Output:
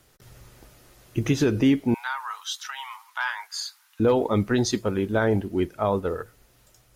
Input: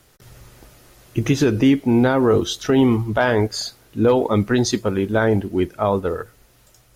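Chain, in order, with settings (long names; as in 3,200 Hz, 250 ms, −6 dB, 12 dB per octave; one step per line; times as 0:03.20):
0:01.94–0:04.00: Chebyshev high-pass filter 910 Hz, order 5
level −4.5 dB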